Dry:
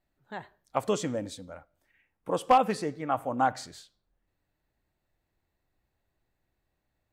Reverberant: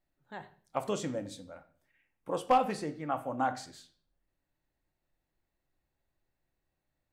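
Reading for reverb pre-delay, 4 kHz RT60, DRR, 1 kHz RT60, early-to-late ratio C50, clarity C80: 3 ms, 0.45 s, 8.5 dB, 0.40 s, 15.5 dB, 19.5 dB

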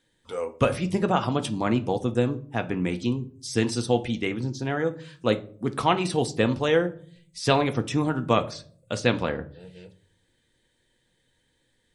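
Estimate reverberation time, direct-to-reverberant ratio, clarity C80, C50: 0.50 s, 7.0 dB, 22.5 dB, 17.0 dB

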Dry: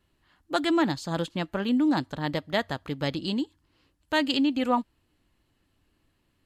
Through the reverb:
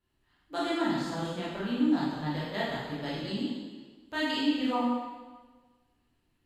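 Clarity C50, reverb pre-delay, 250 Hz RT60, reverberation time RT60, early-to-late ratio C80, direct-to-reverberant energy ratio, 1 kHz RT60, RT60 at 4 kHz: −1.5 dB, 7 ms, 1.4 s, 1.4 s, 1.5 dB, −8.5 dB, 1.4 s, 1.3 s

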